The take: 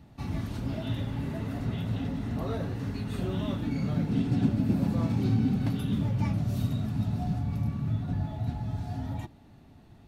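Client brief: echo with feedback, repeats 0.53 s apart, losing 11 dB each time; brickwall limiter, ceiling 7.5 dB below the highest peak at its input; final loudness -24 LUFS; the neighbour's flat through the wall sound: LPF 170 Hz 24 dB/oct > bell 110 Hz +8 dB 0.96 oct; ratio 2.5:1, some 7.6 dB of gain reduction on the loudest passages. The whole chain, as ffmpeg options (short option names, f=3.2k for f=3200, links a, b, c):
-af "acompressor=threshold=-32dB:ratio=2.5,alimiter=level_in=4.5dB:limit=-24dB:level=0:latency=1,volume=-4.5dB,lowpass=f=170:w=0.5412,lowpass=f=170:w=1.3066,equalizer=f=110:t=o:w=0.96:g=8,aecho=1:1:530|1060|1590:0.282|0.0789|0.0221,volume=9dB"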